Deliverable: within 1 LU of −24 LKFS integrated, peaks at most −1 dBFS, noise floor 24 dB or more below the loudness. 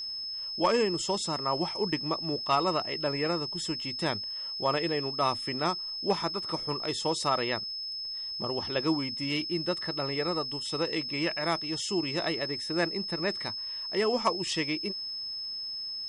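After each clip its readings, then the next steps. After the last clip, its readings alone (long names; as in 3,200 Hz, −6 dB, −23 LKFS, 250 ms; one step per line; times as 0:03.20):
crackle rate 35 per second; interfering tone 5,200 Hz; level of the tone −34 dBFS; integrated loudness −30.0 LKFS; sample peak −14.5 dBFS; target loudness −24.0 LKFS
→ click removal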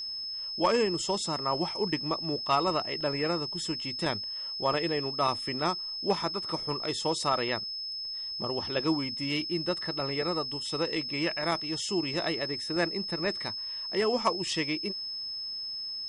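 crackle rate 0.12 per second; interfering tone 5,200 Hz; level of the tone −34 dBFS
→ notch filter 5,200 Hz, Q 30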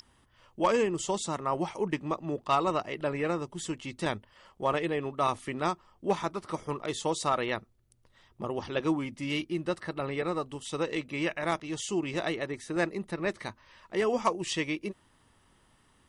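interfering tone none found; integrated loudness −32.0 LKFS; sample peak −15.0 dBFS; target loudness −24.0 LKFS
→ level +8 dB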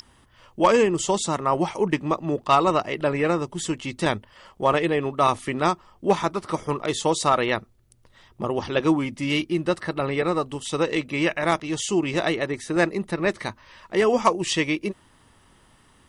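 integrated loudness −24.0 LKFS; sample peak −7.0 dBFS; background noise floor −58 dBFS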